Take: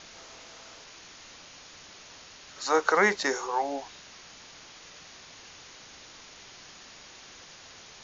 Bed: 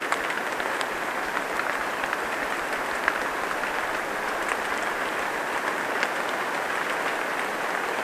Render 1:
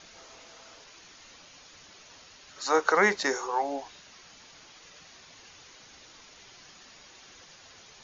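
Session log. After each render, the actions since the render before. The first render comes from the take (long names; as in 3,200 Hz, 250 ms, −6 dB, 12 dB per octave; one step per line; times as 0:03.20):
broadband denoise 6 dB, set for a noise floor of −50 dBFS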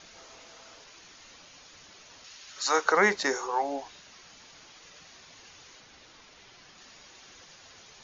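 0:02.24–0:02.85: tilt shelving filter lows −5.5 dB, about 1,100 Hz
0:05.80–0:06.78: high-frequency loss of the air 69 metres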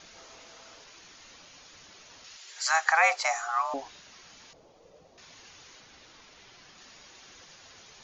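0:02.37–0:03.74: frequency shifter +330 Hz
0:04.53–0:05.18: drawn EQ curve 310 Hz 0 dB, 510 Hz +9 dB, 1,600 Hz −16 dB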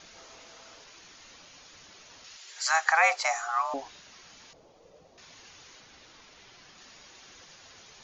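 no processing that can be heard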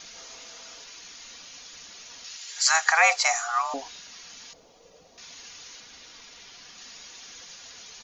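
high-shelf EQ 2,600 Hz +10.5 dB
comb filter 4.2 ms, depth 31%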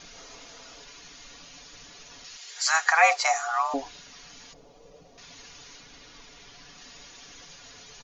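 spectral tilt −2 dB per octave
comb filter 7 ms, depth 43%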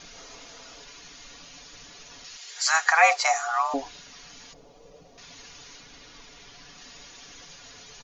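level +1 dB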